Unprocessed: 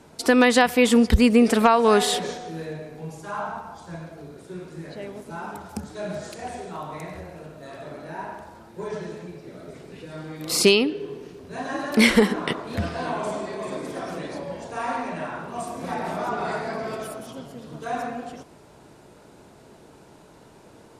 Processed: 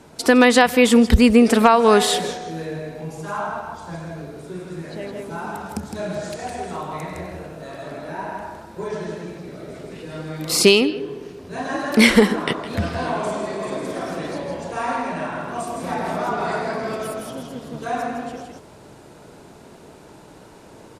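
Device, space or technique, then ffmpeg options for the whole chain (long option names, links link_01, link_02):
ducked delay: -filter_complex "[0:a]asplit=3[link_01][link_02][link_03];[link_02]adelay=161,volume=-2.5dB[link_04];[link_03]apad=whole_len=933018[link_05];[link_04][link_05]sidechaincompress=threshold=-31dB:ratio=8:attack=31:release=820[link_06];[link_01][link_06]amix=inputs=2:normalize=0,volume=3.5dB"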